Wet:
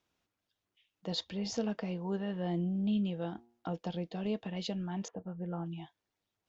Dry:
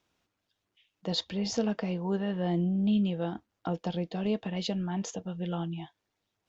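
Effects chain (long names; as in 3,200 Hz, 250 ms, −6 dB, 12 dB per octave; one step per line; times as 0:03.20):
0:03.22–0:03.73: hum removal 118.3 Hz, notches 9
0:05.08–0:05.66: low-pass filter 1,600 Hz 24 dB per octave
level −5 dB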